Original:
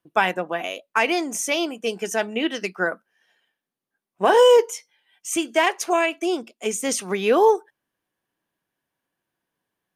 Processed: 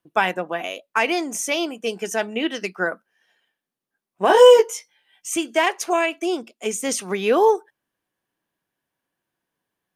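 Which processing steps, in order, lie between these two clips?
0:04.28–0:05.28: double-tracking delay 16 ms −2 dB

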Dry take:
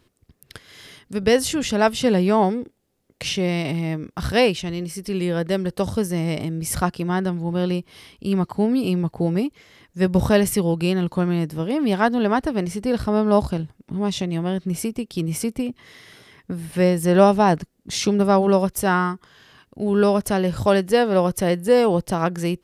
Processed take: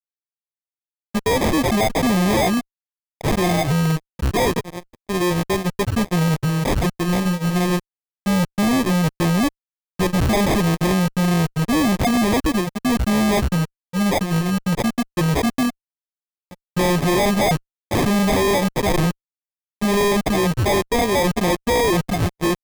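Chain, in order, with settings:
spectral dynamics exaggerated over time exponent 3
0:11.69–0:12.16: compressor whose output falls as the input rises −26 dBFS, ratio −0.5
harmonic generator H 5 −26 dB, 6 −19 dB, 7 −42 dB, 8 −44 dB, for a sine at −6 dBFS
fuzz pedal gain 46 dB, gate −48 dBFS
decimation without filtering 31×
level −3 dB

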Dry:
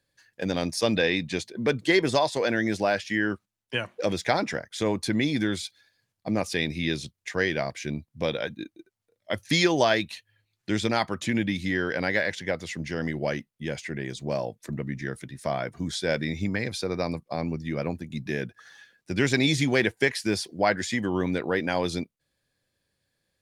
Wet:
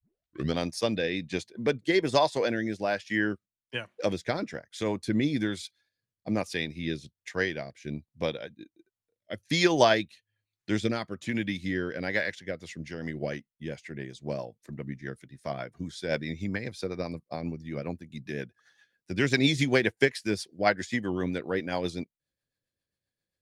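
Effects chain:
turntable start at the beginning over 0.57 s
rotating-speaker cabinet horn 1.2 Hz, later 7.5 Hz, at 0:12.26
expander for the loud parts 1.5 to 1, over −44 dBFS
level +2.5 dB

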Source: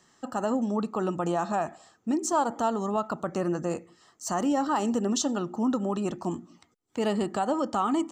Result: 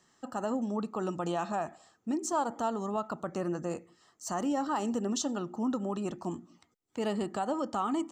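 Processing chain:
0:01.01–0:01.49: parametric band 7,500 Hz → 2,300 Hz +8.5 dB 0.77 octaves
level −5 dB

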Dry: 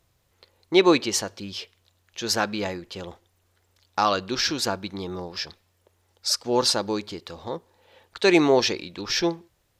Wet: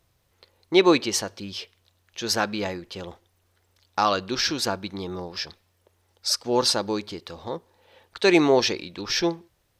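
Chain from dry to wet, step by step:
notch filter 7,100 Hz, Q 14

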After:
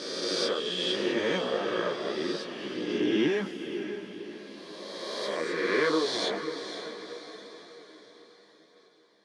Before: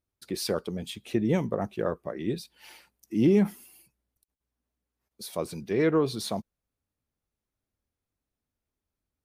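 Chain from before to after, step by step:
peak hold with a rise ahead of every peak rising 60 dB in 2.29 s
loudspeaker in its box 330–6,900 Hz, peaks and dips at 700 Hz −6 dB, 1,700 Hz +6 dB, 3,200 Hz +10 dB
on a send: feedback delay with all-pass diffusion 532 ms, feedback 49%, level −9 dB
on the sum: multi-voice chorus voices 2, 0.85 Hz, delay 14 ms, depth 3.2 ms

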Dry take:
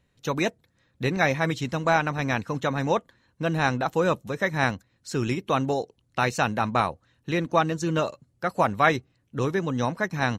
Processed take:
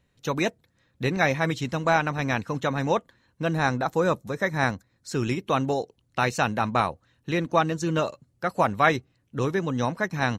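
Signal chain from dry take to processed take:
0:03.51–0:05.12: parametric band 2,900 Hz −8.5 dB 0.37 octaves

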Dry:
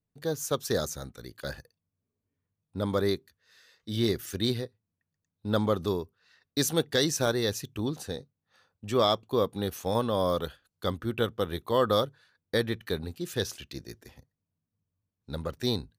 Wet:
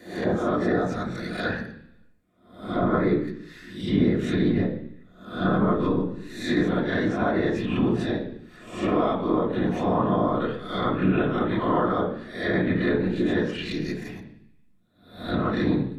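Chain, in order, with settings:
peak hold with a rise ahead of every peak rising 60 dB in 0.56 s
downward compressor 6 to 1, threshold −28 dBFS, peak gain reduction 10 dB
treble cut that deepens with the level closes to 1,600 Hz, closed at −28.5 dBFS
random phases in short frames
convolution reverb RT60 0.70 s, pre-delay 3 ms, DRR −3.5 dB
level +5 dB

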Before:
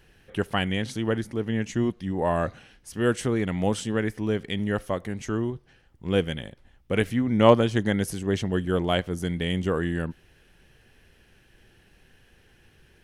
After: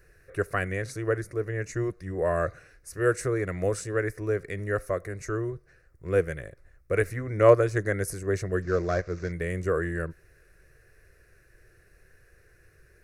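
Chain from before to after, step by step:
0:08.62–0:09.32: variable-slope delta modulation 32 kbit/s
phaser with its sweep stopped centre 860 Hz, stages 6
level +1.5 dB

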